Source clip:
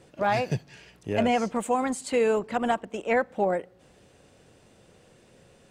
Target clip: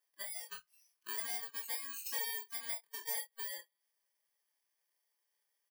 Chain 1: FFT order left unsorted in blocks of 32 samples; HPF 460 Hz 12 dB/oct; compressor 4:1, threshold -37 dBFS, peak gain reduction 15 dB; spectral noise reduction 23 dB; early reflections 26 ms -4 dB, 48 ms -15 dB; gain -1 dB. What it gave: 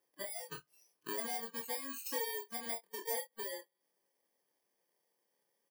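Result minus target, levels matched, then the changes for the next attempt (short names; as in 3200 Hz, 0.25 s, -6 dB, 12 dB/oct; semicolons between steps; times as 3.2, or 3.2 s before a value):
500 Hz band +13.5 dB
change: HPF 1300 Hz 12 dB/oct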